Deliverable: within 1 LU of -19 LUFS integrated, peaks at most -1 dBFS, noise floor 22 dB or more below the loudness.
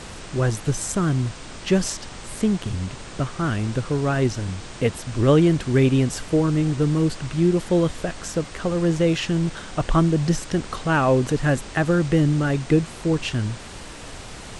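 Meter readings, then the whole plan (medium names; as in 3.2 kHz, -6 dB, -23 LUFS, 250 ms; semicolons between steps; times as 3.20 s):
noise floor -38 dBFS; noise floor target -45 dBFS; loudness -22.5 LUFS; peak level -6.5 dBFS; loudness target -19.0 LUFS
-> noise print and reduce 7 dB; trim +3.5 dB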